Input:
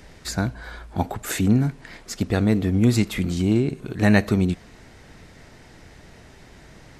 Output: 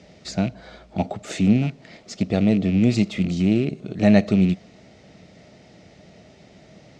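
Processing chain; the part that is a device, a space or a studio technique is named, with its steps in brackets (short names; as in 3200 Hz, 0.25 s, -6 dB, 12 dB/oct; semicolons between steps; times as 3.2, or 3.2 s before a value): car door speaker with a rattle (rattling part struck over -23 dBFS, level -23 dBFS; speaker cabinet 100–6600 Hz, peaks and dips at 190 Hz +7 dB, 620 Hz +8 dB, 1000 Hz -9 dB, 1600 Hz -10 dB); gain -1.5 dB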